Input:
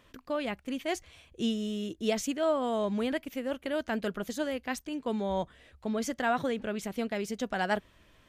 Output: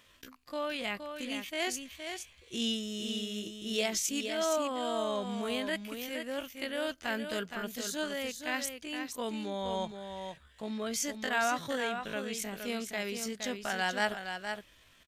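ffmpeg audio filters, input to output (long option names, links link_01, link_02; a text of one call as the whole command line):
ffmpeg -i in.wav -af "atempo=0.55,tiltshelf=frequency=1500:gain=-6.5,aecho=1:1:468:0.447" out.wav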